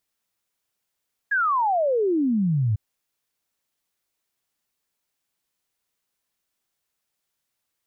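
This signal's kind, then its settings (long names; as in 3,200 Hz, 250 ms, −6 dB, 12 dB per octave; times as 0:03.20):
exponential sine sweep 1,700 Hz → 100 Hz 1.45 s −18.5 dBFS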